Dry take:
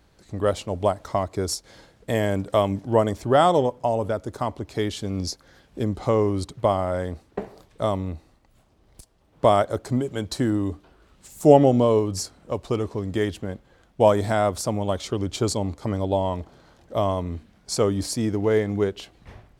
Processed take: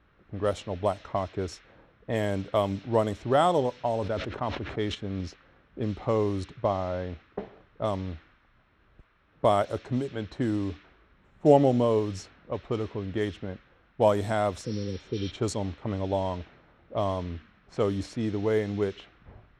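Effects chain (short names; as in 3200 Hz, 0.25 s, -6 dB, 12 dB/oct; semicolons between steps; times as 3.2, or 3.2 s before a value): 6.57–7.25 air absorption 230 m; 14.67–15.28 spectral repair 530–5800 Hz both; band noise 1200–5200 Hz -48 dBFS; notch 4700 Hz, Q 6.7; low-pass opened by the level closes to 760 Hz, open at -17 dBFS; 4.01–4.95 sustainer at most 58 dB/s; gain -5 dB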